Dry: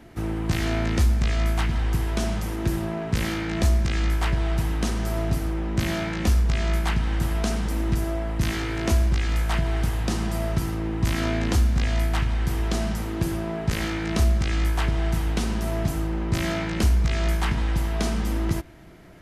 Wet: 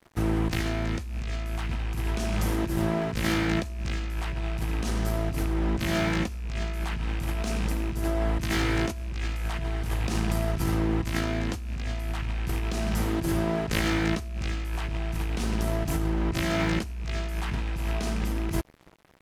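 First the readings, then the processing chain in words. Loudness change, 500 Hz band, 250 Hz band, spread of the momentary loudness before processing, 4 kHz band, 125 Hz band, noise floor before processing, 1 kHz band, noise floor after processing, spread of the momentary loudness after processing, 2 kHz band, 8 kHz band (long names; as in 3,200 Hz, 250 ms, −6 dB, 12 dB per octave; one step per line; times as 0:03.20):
−4.0 dB, −1.5 dB, −1.5 dB, 5 LU, −2.5 dB, −5.0 dB, −30 dBFS, −2.0 dB, −35 dBFS, 6 LU, −1.5 dB, −3.5 dB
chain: loose part that buzzes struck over −21 dBFS, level −26 dBFS
dead-zone distortion −43.5 dBFS
compressor whose output falls as the input rises −28 dBFS, ratio −1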